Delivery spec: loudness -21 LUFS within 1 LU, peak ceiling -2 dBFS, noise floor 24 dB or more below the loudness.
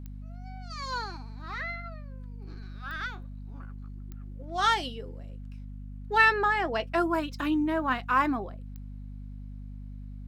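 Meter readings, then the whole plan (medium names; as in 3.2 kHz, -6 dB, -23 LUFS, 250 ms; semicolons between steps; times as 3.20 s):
clicks found 4; hum 50 Hz; highest harmonic 250 Hz; hum level -38 dBFS; loudness -28.0 LUFS; peak level -8.0 dBFS; loudness target -21.0 LUFS
-> de-click; de-hum 50 Hz, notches 5; trim +7 dB; peak limiter -2 dBFS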